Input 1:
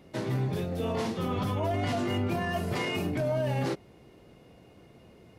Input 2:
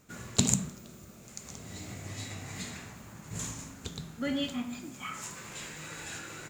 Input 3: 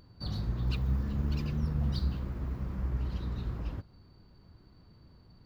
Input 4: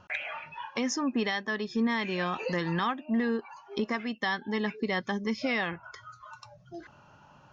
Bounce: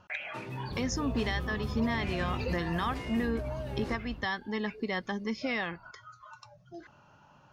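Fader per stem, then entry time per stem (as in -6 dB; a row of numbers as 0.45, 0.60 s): -10.5 dB, off, -6.5 dB, -3.0 dB; 0.20 s, off, 0.45 s, 0.00 s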